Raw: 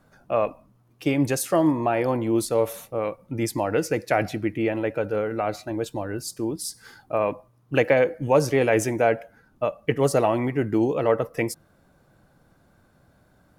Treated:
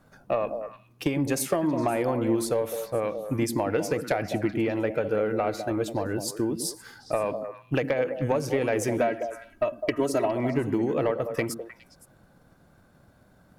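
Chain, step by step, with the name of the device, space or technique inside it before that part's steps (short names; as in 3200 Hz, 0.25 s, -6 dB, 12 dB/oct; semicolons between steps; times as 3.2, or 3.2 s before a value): 9.01–10.33 comb 3.1 ms, depth 82%; drum-bus smash (transient shaper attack +5 dB, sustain 0 dB; compressor 12:1, threshold -20 dBFS, peak gain reduction 11 dB; soft clip -14 dBFS, distortion -20 dB); delay with a stepping band-pass 0.103 s, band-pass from 210 Hz, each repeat 1.4 oct, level -4 dB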